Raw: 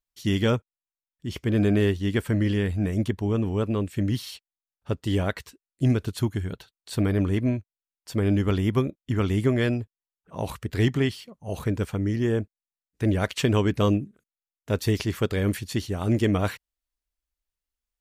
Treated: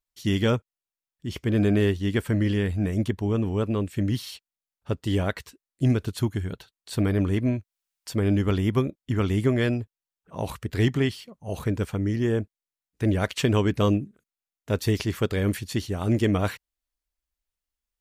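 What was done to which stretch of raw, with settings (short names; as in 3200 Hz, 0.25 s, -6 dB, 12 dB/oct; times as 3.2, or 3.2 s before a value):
7.07–8.13 mismatched tape noise reduction encoder only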